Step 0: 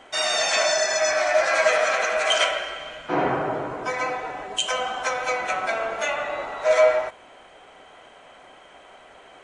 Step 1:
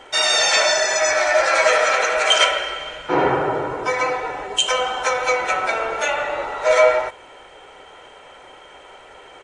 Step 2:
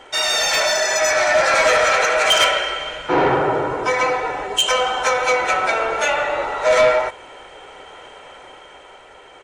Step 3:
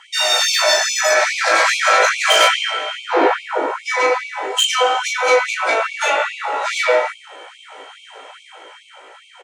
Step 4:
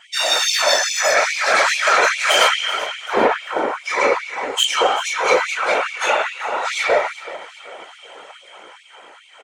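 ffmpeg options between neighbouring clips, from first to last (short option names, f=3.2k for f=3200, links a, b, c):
-af "aecho=1:1:2.2:0.45,volume=4.5dB"
-af "asoftclip=type=tanh:threshold=-12dB,dynaudnorm=f=110:g=17:m=3.5dB"
-af "aecho=1:1:18|36:0.631|0.668,afftfilt=real='re*gte(b*sr/1024,240*pow(2200/240,0.5+0.5*sin(2*PI*2.4*pts/sr)))':imag='im*gte(b*sr/1024,240*pow(2200/240,0.5+0.5*sin(2*PI*2.4*pts/sr)))':win_size=1024:overlap=0.75"
-af "aecho=1:1:385|770|1155|1540:0.158|0.0713|0.0321|0.0144,afftfilt=real='hypot(re,im)*cos(2*PI*random(0))':imag='hypot(re,im)*sin(2*PI*random(1))':win_size=512:overlap=0.75,volume=4.5dB"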